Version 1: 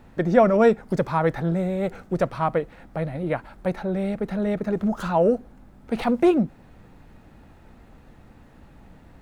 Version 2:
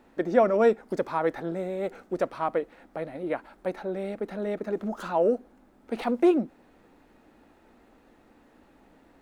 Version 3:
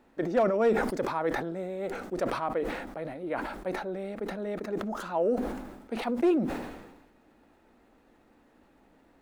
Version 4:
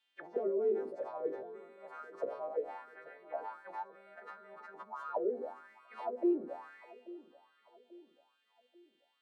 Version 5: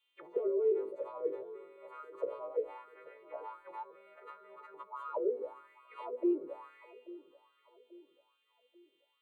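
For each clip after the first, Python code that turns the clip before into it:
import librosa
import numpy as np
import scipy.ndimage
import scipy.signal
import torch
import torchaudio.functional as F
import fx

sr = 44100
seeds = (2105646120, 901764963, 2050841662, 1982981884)

y1 = fx.low_shelf_res(x, sr, hz=200.0, db=-11.5, q=1.5)
y1 = F.gain(torch.from_numpy(y1), -5.0).numpy()
y2 = np.clip(10.0 ** (13.5 / 20.0) * y1, -1.0, 1.0) / 10.0 ** (13.5 / 20.0)
y2 = fx.sustainer(y2, sr, db_per_s=50.0)
y2 = F.gain(torch.from_numpy(y2), -4.0).numpy()
y3 = fx.freq_snap(y2, sr, grid_st=2)
y3 = fx.auto_wah(y3, sr, base_hz=390.0, top_hz=3300.0, q=6.9, full_db=-24.5, direction='down')
y3 = fx.echo_feedback(y3, sr, ms=837, feedback_pct=43, wet_db=-18.5)
y4 = fx.fixed_phaser(y3, sr, hz=1100.0, stages=8)
y4 = F.gain(torch.from_numpy(y4), 2.0).numpy()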